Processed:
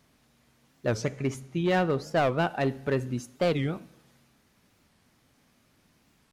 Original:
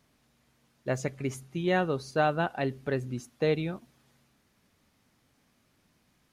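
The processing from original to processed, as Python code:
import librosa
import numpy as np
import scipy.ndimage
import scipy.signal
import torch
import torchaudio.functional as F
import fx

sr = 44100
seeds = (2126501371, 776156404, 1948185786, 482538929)

p1 = fx.high_shelf(x, sr, hz=fx.line((1.01, 9500.0), (2.37, 5100.0)), db=-9.5, at=(1.01, 2.37), fade=0.02)
p2 = 10.0 ** (-24.5 / 20.0) * (np.abs((p1 / 10.0 ** (-24.5 / 20.0) + 3.0) % 4.0 - 2.0) - 1.0)
p3 = p1 + (p2 * 10.0 ** (-6.0 / 20.0))
p4 = fx.rev_plate(p3, sr, seeds[0], rt60_s=0.81, hf_ratio=0.9, predelay_ms=0, drr_db=16.5)
y = fx.record_warp(p4, sr, rpm=45.0, depth_cents=250.0)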